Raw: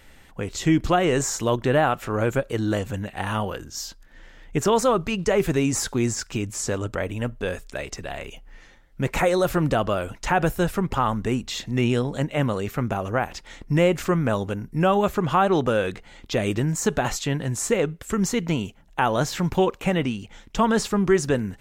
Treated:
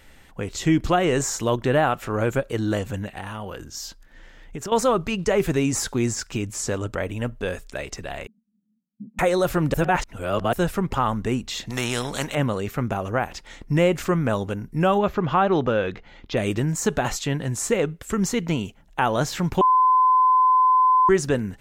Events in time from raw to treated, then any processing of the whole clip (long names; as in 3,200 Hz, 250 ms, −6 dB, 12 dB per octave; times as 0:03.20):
0:03.17–0:04.72: downward compressor, threshold −29 dBFS
0:08.27–0:09.19: flat-topped band-pass 210 Hz, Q 5.7
0:09.74–0:10.53: reverse
0:11.70–0:12.35: every bin compressed towards the loudest bin 2 to 1
0:14.98–0:16.37: moving average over 5 samples
0:19.61–0:21.09: beep over 1,020 Hz −13.5 dBFS